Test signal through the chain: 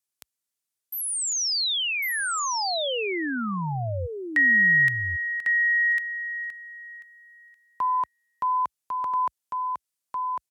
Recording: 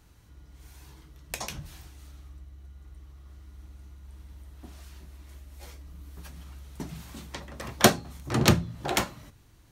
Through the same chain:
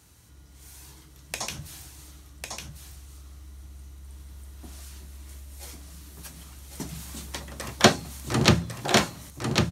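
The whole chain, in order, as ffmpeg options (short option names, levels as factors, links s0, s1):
-filter_complex "[0:a]acrossover=split=5200[s0][s1];[s1]acompressor=threshold=0.00794:ratio=4:attack=1:release=60[s2];[s0][s2]amix=inputs=2:normalize=0,highpass=f=60:w=0.5412,highpass=f=60:w=1.3066,equalizer=f=9500:t=o:w=1.9:g=10.5,aecho=1:1:1100:0.596,volume=1.12"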